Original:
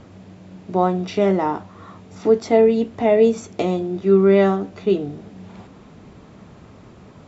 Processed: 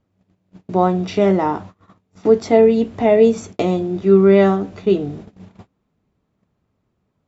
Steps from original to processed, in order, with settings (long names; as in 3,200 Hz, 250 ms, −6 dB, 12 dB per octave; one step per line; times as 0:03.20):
noise gate −37 dBFS, range −29 dB
low-shelf EQ 110 Hz +5.5 dB
level +2 dB